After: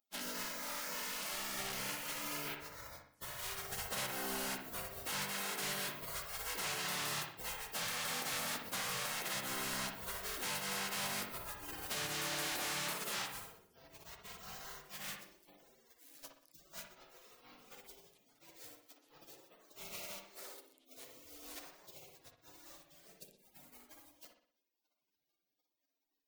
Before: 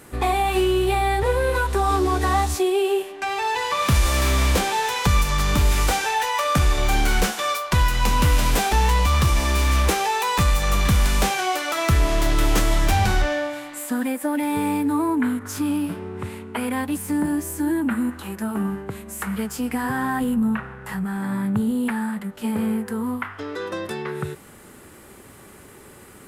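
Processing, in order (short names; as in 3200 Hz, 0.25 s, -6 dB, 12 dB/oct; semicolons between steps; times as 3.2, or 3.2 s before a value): in parallel at -3.5 dB: bit-crush 5-bit; on the sum: passive tone stack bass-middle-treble 10-0-10; spectral gate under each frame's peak -30 dB weak; high shelf 4400 Hz -10.5 dB; hard clip -34.5 dBFS, distortion -13 dB; compressor, threshold -44 dBFS, peak gain reduction 7.5 dB; dark delay 61 ms, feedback 45%, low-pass 2900 Hz, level -4.5 dB; gain +6 dB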